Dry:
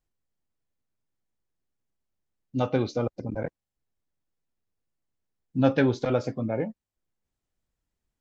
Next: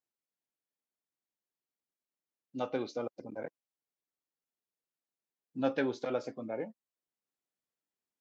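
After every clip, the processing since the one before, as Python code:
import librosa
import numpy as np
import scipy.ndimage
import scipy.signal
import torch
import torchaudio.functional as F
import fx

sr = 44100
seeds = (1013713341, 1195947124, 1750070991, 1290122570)

y = scipy.signal.sosfilt(scipy.signal.butter(2, 270.0, 'highpass', fs=sr, output='sos'), x)
y = y * 10.0 ** (-7.5 / 20.0)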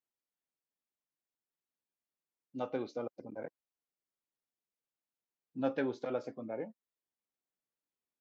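y = fx.high_shelf(x, sr, hz=2800.0, db=-7.5)
y = y * 10.0 ** (-2.0 / 20.0)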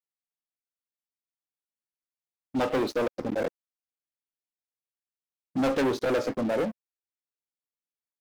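y = fx.leveller(x, sr, passes=5)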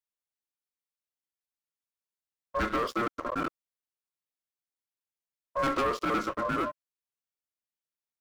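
y = x * np.sin(2.0 * np.pi * 820.0 * np.arange(len(x)) / sr)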